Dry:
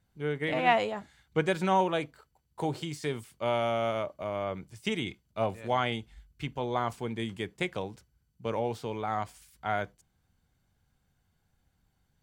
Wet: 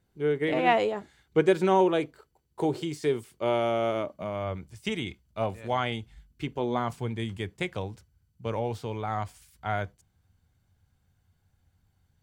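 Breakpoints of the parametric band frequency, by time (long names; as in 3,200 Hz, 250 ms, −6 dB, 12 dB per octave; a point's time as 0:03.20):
parametric band +10 dB 0.73 octaves
0:03.93 380 Hz
0:04.64 67 Hz
0:05.94 67 Hz
0:06.51 440 Hz
0:07.12 90 Hz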